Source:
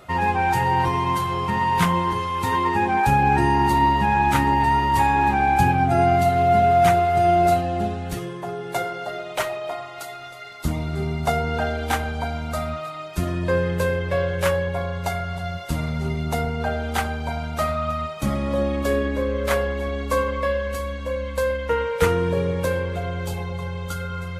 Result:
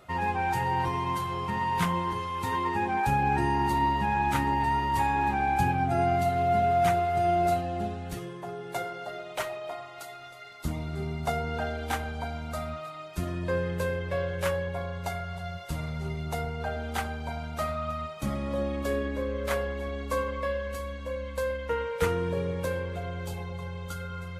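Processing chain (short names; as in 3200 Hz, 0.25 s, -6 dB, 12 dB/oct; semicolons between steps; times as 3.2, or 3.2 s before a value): 15.18–16.77 bell 260 Hz -13.5 dB 0.24 oct; gain -7.5 dB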